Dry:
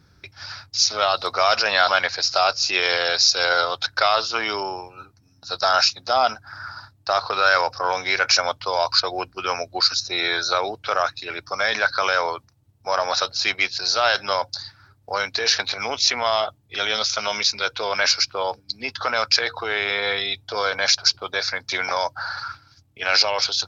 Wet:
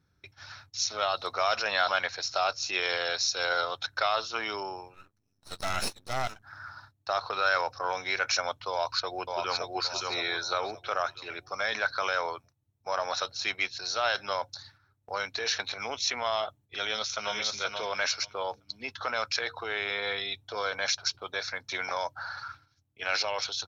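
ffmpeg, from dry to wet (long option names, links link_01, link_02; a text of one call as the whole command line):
ffmpeg -i in.wav -filter_complex "[0:a]asettb=1/sr,asplit=3[link_01][link_02][link_03];[link_01]atrim=end=4.944[link_04];[link_02]atrim=start=4.94:end=6.43,asetpts=PTS-STARTPTS,afade=type=in:duration=0.004:curve=qsin,afade=type=out:start_time=1.486:duration=0.004:curve=qsin,aeval=exprs='max(val(0),0)':channel_layout=same[link_05];[link_03]atrim=start=6.426[link_06];[link_04][link_05]acrossfade=duration=0.004:curve1=hsin:curve2=qsin[link_07];[link_07][link_06]acrossfade=duration=0.004:curve1=qsin:curve2=hsin,asplit=2[link_08][link_09];[link_09]afade=type=in:start_time=8.7:duration=0.01,afade=type=out:start_time=9.65:duration=0.01,aecho=0:1:570|1140|1710|2280|2850:0.707946|0.247781|0.0867234|0.0303532|0.0106236[link_10];[link_08][link_10]amix=inputs=2:normalize=0,asplit=2[link_11][link_12];[link_12]afade=type=in:start_time=16.78:duration=0.01,afade=type=out:start_time=17.37:duration=0.01,aecho=0:1:480|960|1440:0.562341|0.0843512|0.0126527[link_13];[link_11][link_13]amix=inputs=2:normalize=0,agate=range=-7dB:threshold=-46dB:ratio=16:detection=peak,bandreject=frequency=4800:width=5.8,volume=-8.5dB" out.wav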